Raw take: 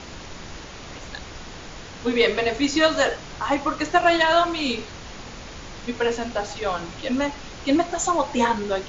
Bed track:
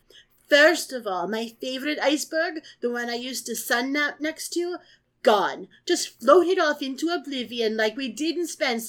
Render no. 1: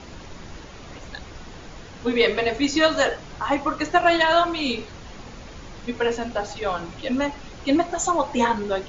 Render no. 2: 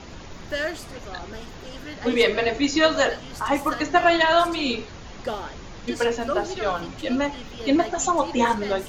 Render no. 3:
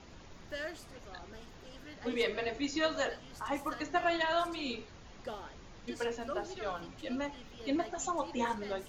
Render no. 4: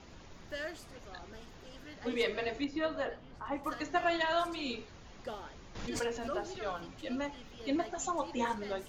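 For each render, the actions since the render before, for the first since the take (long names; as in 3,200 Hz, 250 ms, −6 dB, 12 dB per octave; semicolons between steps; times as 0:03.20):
broadband denoise 6 dB, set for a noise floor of −39 dBFS
mix in bed track −11.5 dB
level −13 dB
0:02.64–0:03.64: head-to-tape spacing loss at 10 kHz 27 dB; 0:05.75–0:06.60: background raised ahead of every attack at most 48 dB per second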